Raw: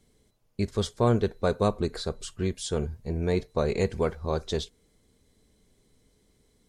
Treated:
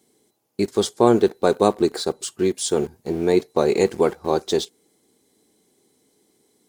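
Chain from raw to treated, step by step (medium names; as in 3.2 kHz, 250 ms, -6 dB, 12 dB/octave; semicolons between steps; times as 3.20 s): high-pass 190 Hz 12 dB/octave; treble shelf 6.3 kHz +11 dB; small resonant body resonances 340/790 Hz, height 9 dB, ringing for 20 ms; in parallel at -4 dB: small samples zeroed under -36.5 dBFS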